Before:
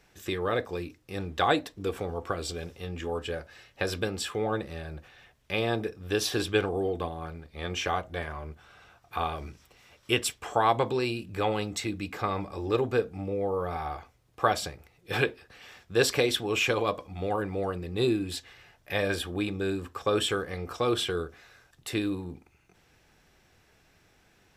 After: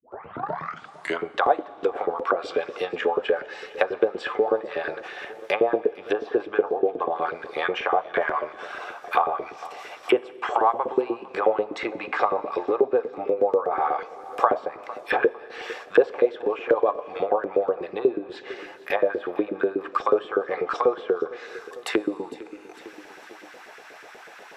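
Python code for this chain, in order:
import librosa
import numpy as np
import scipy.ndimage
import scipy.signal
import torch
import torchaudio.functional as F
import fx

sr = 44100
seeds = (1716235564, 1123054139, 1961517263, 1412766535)

p1 = fx.tape_start_head(x, sr, length_s=1.37)
p2 = fx.high_shelf(p1, sr, hz=8600.0, db=-3.5)
p3 = fx.env_lowpass_down(p2, sr, base_hz=780.0, full_db=-26.5)
p4 = fx.rider(p3, sr, range_db=5, speed_s=0.5)
p5 = p3 + F.gain(torch.from_numpy(p4), -2.0).numpy()
p6 = fx.filter_lfo_highpass(p5, sr, shape='saw_up', hz=8.2, low_hz=360.0, high_hz=1700.0, q=2.3)
p7 = p6 + fx.echo_feedback(p6, sr, ms=453, feedback_pct=47, wet_db=-22.0, dry=0)
p8 = fx.rev_schroeder(p7, sr, rt60_s=2.1, comb_ms=28, drr_db=19.5)
p9 = fx.band_squash(p8, sr, depth_pct=40)
y = F.gain(torch.from_numpy(p9), 2.0).numpy()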